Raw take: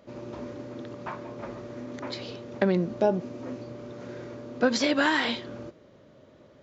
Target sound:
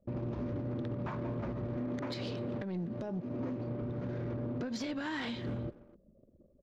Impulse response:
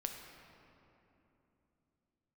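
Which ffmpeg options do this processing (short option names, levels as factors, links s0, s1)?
-filter_complex "[0:a]asettb=1/sr,asplit=3[s0][s1][s2];[s0]atrim=end=1.764[s3];[s1]atrim=start=1.76:end=3.82,asetpts=PTS-STARTPTS,afade=t=in:d=0.004:c=qsin,afade=t=out:st=2.056:d=0.004:c=qsin,highpass=f=180:p=1[s4];[s2]atrim=start=3.816[s5];[s3][s4]acrossfade=d=0.004:c1=hsin:c2=qsin[s6];[s6][s5]acrossfade=d=0.004:c1=qsin:c2=hsin,anlmdn=0.0398,agate=range=0.316:threshold=0.00178:ratio=16:detection=peak,bass=f=250:g=13,treble=f=4000:g=1,acompressor=threshold=0.02:ratio=10,alimiter=level_in=2.99:limit=0.0631:level=0:latency=1:release=227,volume=0.335,acontrast=71,asoftclip=type=tanh:threshold=0.0335,asplit=2[s7][s8];[s8]adelay=250,highpass=300,lowpass=3400,asoftclip=type=hard:threshold=0.0112,volume=0.158[s9];[s7][s9]amix=inputs=2:normalize=0,adynamicequalizer=threshold=0.00158:dfrequency=4500:dqfactor=0.7:tfrequency=4500:tqfactor=0.7:attack=5:release=100:ratio=0.375:range=2:mode=cutabove:tftype=highshelf"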